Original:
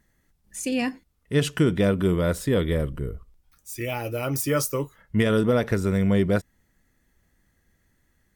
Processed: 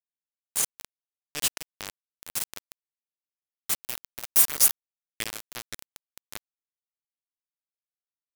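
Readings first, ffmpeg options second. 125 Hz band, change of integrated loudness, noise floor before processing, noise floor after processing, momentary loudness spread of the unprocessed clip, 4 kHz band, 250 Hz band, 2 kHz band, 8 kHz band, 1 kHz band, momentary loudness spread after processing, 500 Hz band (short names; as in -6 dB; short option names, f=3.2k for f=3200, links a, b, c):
-29.5 dB, -0.5 dB, -69 dBFS, under -85 dBFS, 11 LU, +0.5 dB, -28.5 dB, -8.0 dB, +8.0 dB, -10.5 dB, 23 LU, -25.5 dB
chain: -af "anlmdn=1.58,aderivative,acrusher=bits=4:mix=0:aa=0.000001,volume=7.5dB"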